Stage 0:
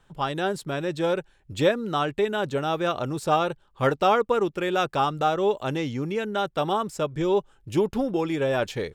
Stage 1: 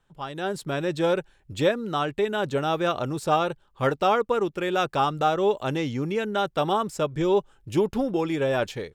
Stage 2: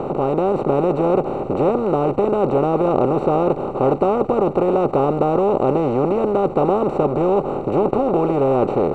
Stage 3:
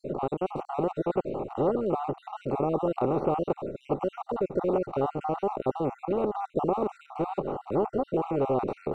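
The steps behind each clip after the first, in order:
level rider gain up to 10.5 dB; trim -8.5 dB
spectral levelling over time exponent 0.2; boxcar filter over 26 samples
random holes in the spectrogram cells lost 47%; trim -8 dB

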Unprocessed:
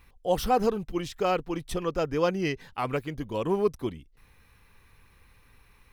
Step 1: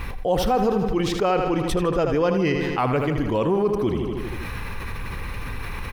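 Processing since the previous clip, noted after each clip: treble shelf 3.7 kHz -9.5 dB; on a send: feedback delay 79 ms, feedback 59%, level -11 dB; on the sum: level flattener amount 70%; trim +1.5 dB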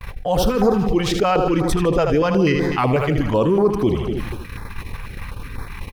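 gate -28 dBFS, range -55 dB; step-sequenced notch 8.1 Hz 280–2800 Hz; trim +5.5 dB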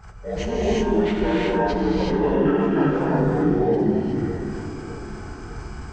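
frequency axis rescaled in octaves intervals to 80%; feedback echo behind a low-pass 608 ms, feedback 48%, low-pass 670 Hz, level -12 dB; gated-style reverb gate 400 ms rising, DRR -5.5 dB; trim -8 dB

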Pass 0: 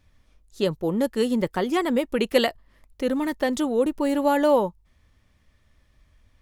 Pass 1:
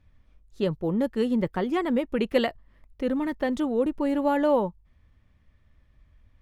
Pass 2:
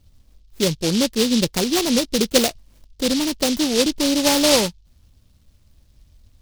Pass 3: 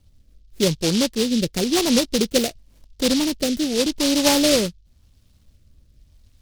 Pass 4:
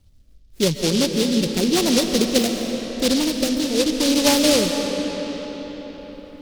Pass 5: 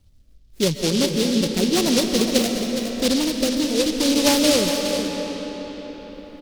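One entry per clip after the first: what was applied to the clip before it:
tone controls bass +5 dB, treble -11 dB; trim -3.5 dB
delay time shaken by noise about 4.1 kHz, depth 0.21 ms; trim +6 dB
rotary cabinet horn 0.9 Hz; trim +1 dB
reverberation RT60 5.2 s, pre-delay 95 ms, DRR 4 dB
delay 414 ms -9 dB; trim -1 dB

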